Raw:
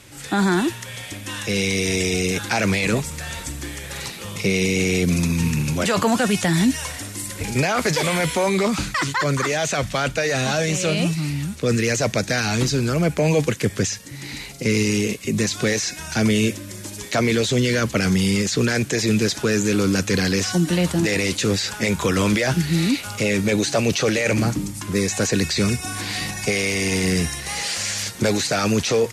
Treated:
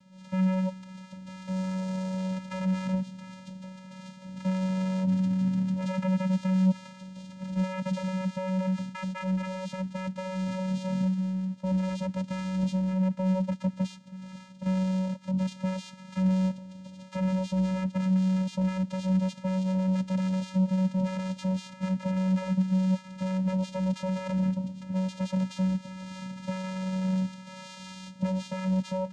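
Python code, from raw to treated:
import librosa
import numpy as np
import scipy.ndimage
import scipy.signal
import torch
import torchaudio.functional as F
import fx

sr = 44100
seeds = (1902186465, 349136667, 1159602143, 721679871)

y = fx.vocoder(x, sr, bands=4, carrier='square', carrier_hz=187.0)
y = fx.peak_eq(y, sr, hz=3000.0, db=-4.0, octaves=1.1, at=(1.49, 2.18))
y = y * 10.0 ** (-7.0 / 20.0)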